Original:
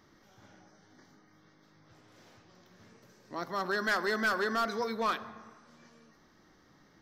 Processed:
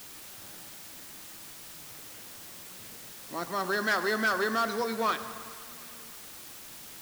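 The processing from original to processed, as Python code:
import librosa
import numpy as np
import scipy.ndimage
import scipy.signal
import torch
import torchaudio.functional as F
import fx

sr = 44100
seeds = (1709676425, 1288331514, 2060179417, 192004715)

p1 = scipy.signal.sosfilt(scipy.signal.butter(2, 47.0, 'highpass', fs=sr, output='sos'), x)
p2 = fx.quant_dither(p1, sr, seeds[0], bits=6, dither='triangular')
p3 = p1 + F.gain(torch.from_numpy(p2), -10.5).numpy()
y = fx.echo_thinned(p3, sr, ms=104, feedback_pct=80, hz=230.0, wet_db=-18.0)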